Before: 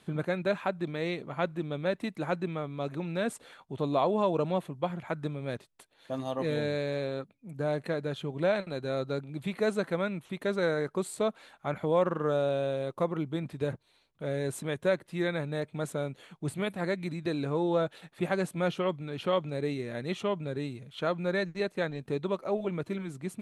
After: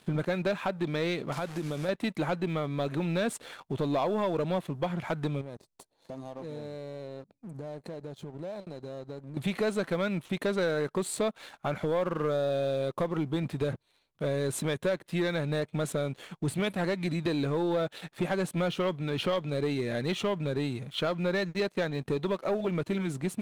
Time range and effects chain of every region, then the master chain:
0:01.32–0:01.89: linear delta modulator 64 kbit/s, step −42 dBFS + downward compressor 4 to 1, threshold −37 dBFS
0:05.41–0:09.37: flat-topped bell 2,100 Hz −11.5 dB + downward compressor 4 to 1, threshold −47 dBFS + low-pass filter 9,900 Hz
whole clip: dynamic equaliser 3,600 Hz, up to +3 dB, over −53 dBFS, Q 1.2; downward compressor 3 to 1, threshold −33 dBFS; leveller curve on the samples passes 2

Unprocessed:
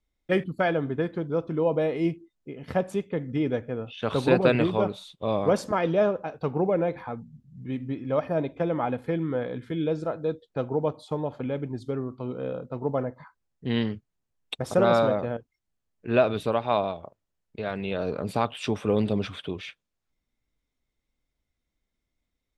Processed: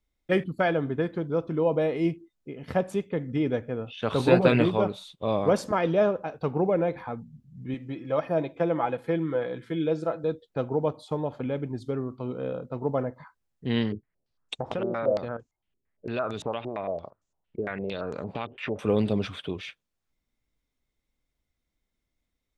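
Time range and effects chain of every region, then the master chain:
0:04.18–0:04.69: double-tracking delay 17 ms −5 dB + bit-depth reduction 12 bits, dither none
0:07.74–0:10.24: high-pass filter 47 Hz + low-shelf EQ 170 Hz −8.5 dB + comb filter 6 ms, depth 42%
0:13.92–0:18.79: downward compressor 3 to 1, threshold −30 dBFS + low-pass on a step sequencer 8.8 Hz 370–6,900 Hz
whole clip: no processing

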